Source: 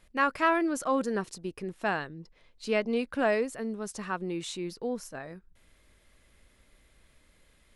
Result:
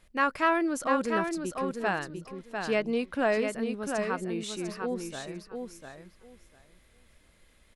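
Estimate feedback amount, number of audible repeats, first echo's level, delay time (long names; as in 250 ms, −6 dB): 16%, 2, −5.5 dB, 698 ms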